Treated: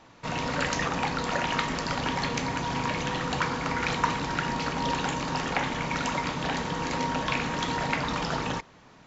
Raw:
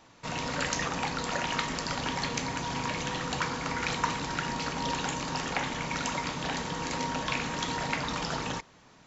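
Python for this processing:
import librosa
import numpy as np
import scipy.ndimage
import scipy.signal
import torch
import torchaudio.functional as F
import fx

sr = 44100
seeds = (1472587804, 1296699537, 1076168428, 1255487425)

y = fx.lowpass(x, sr, hz=3600.0, slope=6)
y = F.gain(torch.from_numpy(y), 4.0).numpy()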